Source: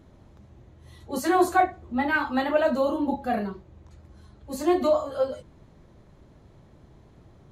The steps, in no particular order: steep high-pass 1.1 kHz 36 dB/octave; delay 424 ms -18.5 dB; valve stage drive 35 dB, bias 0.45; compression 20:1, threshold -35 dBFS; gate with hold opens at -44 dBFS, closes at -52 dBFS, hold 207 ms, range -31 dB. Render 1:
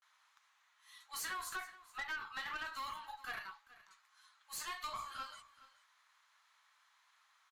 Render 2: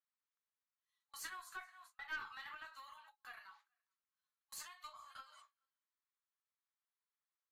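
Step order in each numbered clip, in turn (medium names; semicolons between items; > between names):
gate with hold > steep high-pass > compression > valve stage > delay; delay > compression > steep high-pass > gate with hold > valve stage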